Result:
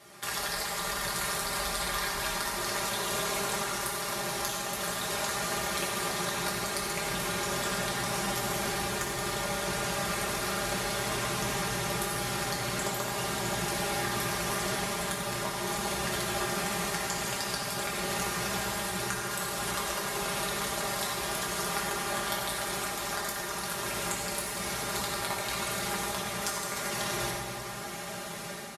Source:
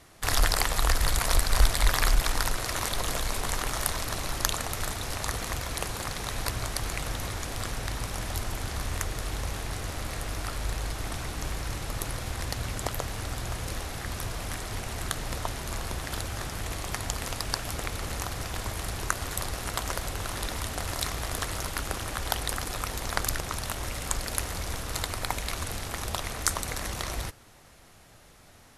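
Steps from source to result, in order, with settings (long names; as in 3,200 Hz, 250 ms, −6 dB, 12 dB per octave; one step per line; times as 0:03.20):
automatic gain control
high-pass filter 150 Hz 12 dB per octave
downward compressor 4 to 1, threshold −36 dBFS, peak gain reduction 18 dB
comb filter 5 ms, depth 76%
convolution reverb RT60 2.6 s, pre-delay 4 ms, DRR −5 dB
level −2 dB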